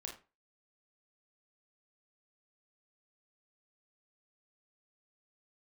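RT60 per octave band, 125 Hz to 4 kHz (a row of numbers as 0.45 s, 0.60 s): 0.30 s, 0.30 s, 0.30 s, 0.30 s, 0.30 s, 0.25 s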